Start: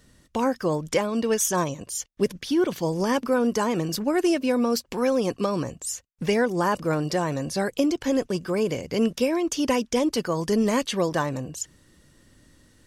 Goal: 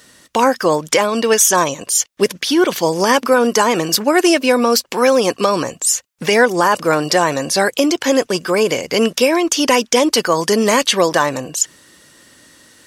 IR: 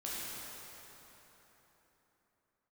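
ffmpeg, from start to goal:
-af "highpass=frequency=750:poles=1,alimiter=level_in=16.5dB:limit=-1dB:release=50:level=0:latency=1,volume=-1dB"

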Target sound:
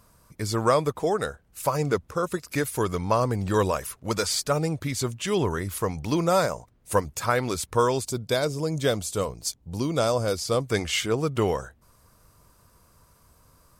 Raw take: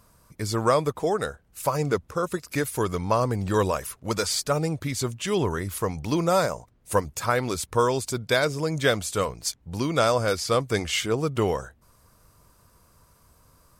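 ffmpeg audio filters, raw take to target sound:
ffmpeg -i in.wav -filter_complex "[0:a]asettb=1/sr,asplit=3[link_01][link_02][link_03];[link_01]atrim=end=8.054[link_04];[link_02]atrim=start=8.05:end=10.64,asetpts=PTS-STARTPTS,afade=type=in:duration=0.004:curve=qsin,afade=type=out:start_time=2.586:duration=0.004:curve=qsin,equalizer=frequency=1800:width_type=o:width=1.6:gain=-8.5[link_05];[link_03]atrim=start=10.636[link_06];[link_04][link_05]acrossfade=duration=0.004:curve1=hsin:curve2=qsin[link_07];[link_07][link_06]acrossfade=duration=0.004:curve1=qsin:curve2=hsin" out.wav

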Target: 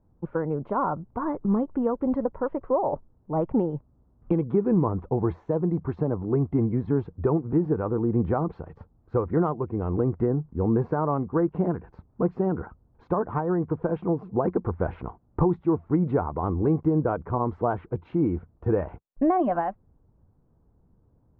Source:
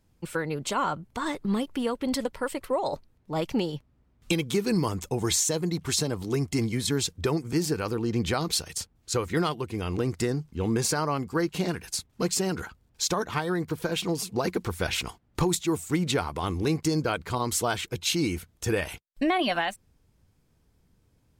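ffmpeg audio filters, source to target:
ffmpeg -i in.wav -af "lowpass=frequency=1100:width=0.5412,lowpass=frequency=1100:width=1.3066,volume=3.5dB" out.wav

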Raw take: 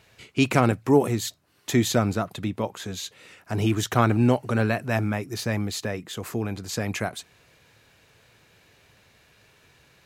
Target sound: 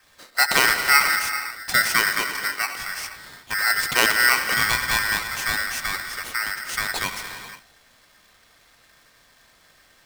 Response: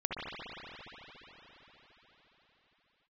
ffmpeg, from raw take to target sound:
-filter_complex "[0:a]adynamicequalizer=threshold=0.00708:dfrequency=2500:dqfactor=2.2:tfrequency=2500:tqfactor=2.2:attack=5:release=100:ratio=0.375:range=2.5:mode=boostabove:tftype=bell,asplit=2[link_01][link_02];[1:a]atrim=start_sample=2205,afade=type=out:start_time=0.42:duration=0.01,atrim=end_sample=18963,asetrate=32193,aresample=44100[link_03];[link_02][link_03]afir=irnorm=-1:irlink=0,volume=-10.5dB[link_04];[link_01][link_04]amix=inputs=2:normalize=0,aeval=exprs='val(0)*sgn(sin(2*PI*1700*n/s))':channel_layout=same,volume=-1.5dB"

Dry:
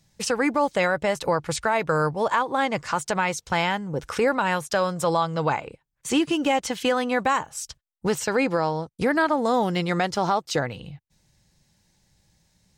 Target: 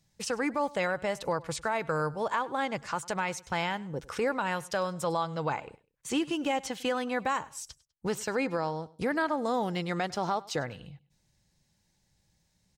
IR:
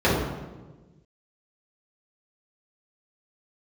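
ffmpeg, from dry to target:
-af "aecho=1:1:100|200:0.0841|0.0261,volume=-7.5dB"

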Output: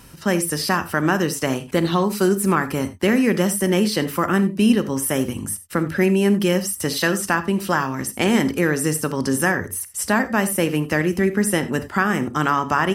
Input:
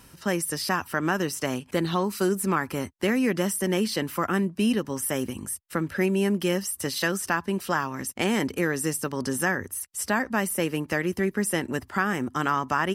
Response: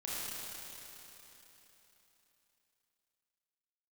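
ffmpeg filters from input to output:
-filter_complex "[0:a]asplit=2[link_01][link_02];[1:a]atrim=start_sample=2205,atrim=end_sample=4410,lowshelf=frequency=400:gain=9.5[link_03];[link_02][link_03]afir=irnorm=-1:irlink=0,volume=-8dB[link_04];[link_01][link_04]amix=inputs=2:normalize=0,volume=3.5dB"

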